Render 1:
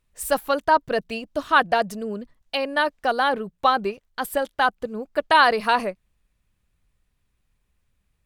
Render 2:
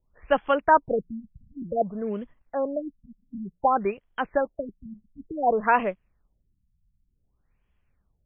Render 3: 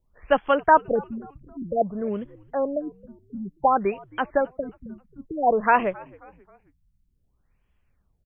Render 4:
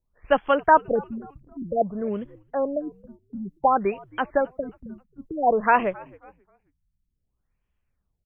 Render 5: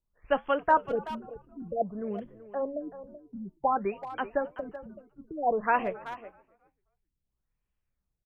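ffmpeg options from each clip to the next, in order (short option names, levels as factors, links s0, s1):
-filter_complex "[0:a]acrossover=split=360|1300|4900[s0][s1][s2][s3];[s0]acrusher=bits=5:mode=log:mix=0:aa=0.000001[s4];[s4][s1][s2][s3]amix=inputs=4:normalize=0,afftfilt=real='re*lt(b*sr/1024,210*pow(3500/210,0.5+0.5*sin(2*PI*0.55*pts/sr)))':imag='im*lt(b*sr/1024,210*pow(3500/210,0.5+0.5*sin(2*PI*0.55*pts/sr)))':win_size=1024:overlap=0.75"
-filter_complex "[0:a]asplit=4[s0][s1][s2][s3];[s1]adelay=267,afreqshift=-90,volume=0.0668[s4];[s2]adelay=534,afreqshift=-180,volume=0.0309[s5];[s3]adelay=801,afreqshift=-270,volume=0.0141[s6];[s0][s4][s5][s6]amix=inputs=4:normalize=0,volume=1.26"
-af "agate=range=0.398:threshold=0.00501:ratio=16:detection=peak"
-filter_complex "[0:a]flanger=delay=5:depth=2.1:regen=-76:speed=1.5:shape=triangular,asplit=2[s0][s1];[s1]adelay=380,highpass=300,lowpass=3400,asoftclip=type=hard:threshold=0.141,volume=0.224[s2];[s0][s2]amix=inputs=2:normalize=0,volume=0.75"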